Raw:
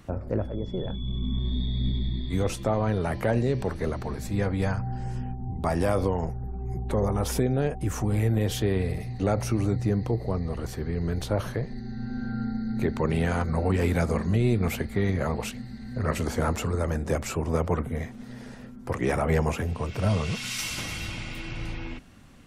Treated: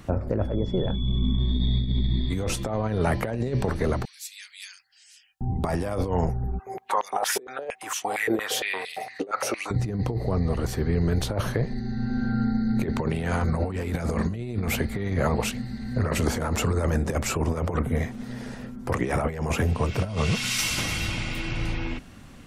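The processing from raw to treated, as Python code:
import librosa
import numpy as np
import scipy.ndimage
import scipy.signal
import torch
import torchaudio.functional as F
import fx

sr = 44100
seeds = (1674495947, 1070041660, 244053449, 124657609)

y = fx.cheby2_highpass(x, sr, hz=600.0, order=4, stop_db=70, at=(4.05, 5.41))
y = fx.filter_held_highpass(y, sr, hz=8.7, low_hz=400.0, high_hz=3100.0, at=(6.58, 9.7), fade=0.02)
y = fx.over_compress(y, sr, threshold_db=-27.0, ratio=-0.5)
y = F.gain(torch.from_numpy(y), 3.5).numpy()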